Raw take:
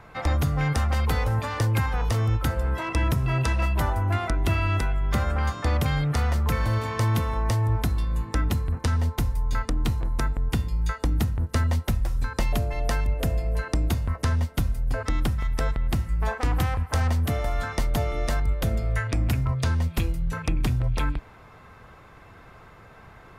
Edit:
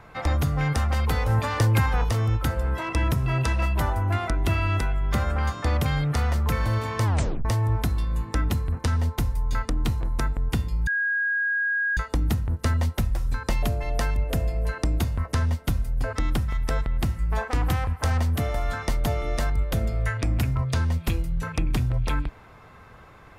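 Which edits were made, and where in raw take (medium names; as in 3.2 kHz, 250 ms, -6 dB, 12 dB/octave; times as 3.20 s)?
1.29–2.04 s: gain +3 dB
7.05 s: tape stop 0.40 s
10.87 s: add tone 1.64 kHz -21.5 dBFS 1.10 s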